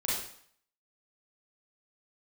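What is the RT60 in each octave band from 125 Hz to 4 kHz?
0.55 s, 0.55 s, 0.55 s, 0.65 s, 0.60 s, 0.55 s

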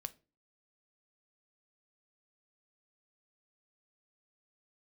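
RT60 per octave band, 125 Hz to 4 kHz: 0.45 s, 0.45 s, 0.35 s, 0.30 s, 0.25 s, 0.25 s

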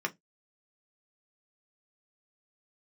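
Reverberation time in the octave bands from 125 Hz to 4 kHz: 0.25 s, 0.20 s, 0.15 s, 0.15 s, 0.15 s, 0.15 s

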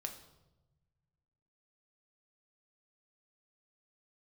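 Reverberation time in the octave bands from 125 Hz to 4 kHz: 2.2 s, 1.8 s, 1.1 s, 0.90 s, 0.70 s, 0.75 s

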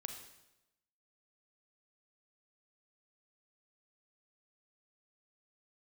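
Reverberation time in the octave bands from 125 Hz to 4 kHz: 1.0 s, 0.95 s, 1.0 s, 0.90 s, 0.85 s, 0.85 s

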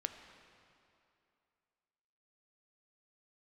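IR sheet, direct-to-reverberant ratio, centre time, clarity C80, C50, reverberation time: 6.5 dB, 35 ms, 8.5 dB, 8.0 dB, 2.7 s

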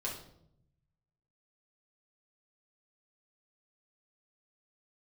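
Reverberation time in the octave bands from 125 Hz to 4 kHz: 1.5 s, 1.1 s, 0.80 s, 0.65 s, 0.50 s, 0.50 s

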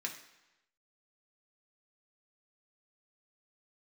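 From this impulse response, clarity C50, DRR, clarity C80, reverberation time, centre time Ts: 9.0 dB, -0.5 dB, 11.5 dB, 1.0 s, 19 ms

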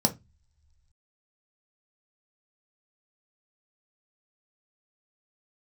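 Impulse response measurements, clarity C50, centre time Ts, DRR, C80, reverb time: 17.5 dB, 7 ms, 3.5 dB, 26.5 dB, no single decay rate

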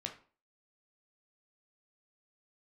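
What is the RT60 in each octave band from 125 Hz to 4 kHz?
0.40 s, 0.45 s, 0.40 s, 0.40 s, 0.35 s, 0.30 s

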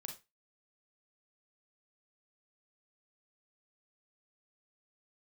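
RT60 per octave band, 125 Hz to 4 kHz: 0.30 s, 0.25 s, 0.25 s, 0.25 s, 0.25 s, 0.20 s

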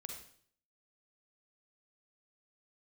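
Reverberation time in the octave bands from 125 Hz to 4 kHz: 0.70 s, 0.60 s, 0.60 s, 0.50 s, 0.50 s, 0.55 s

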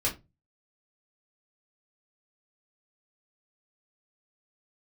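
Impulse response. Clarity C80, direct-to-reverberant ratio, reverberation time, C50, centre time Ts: 21.0 dB, -5.0 dB, 0.25 s, 13.5 dB, 17 ms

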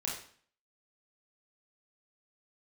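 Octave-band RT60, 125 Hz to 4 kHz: 0.55 s, 0.55 s, 0.50 s, 0.50 s, 0.50 s, 0.50 s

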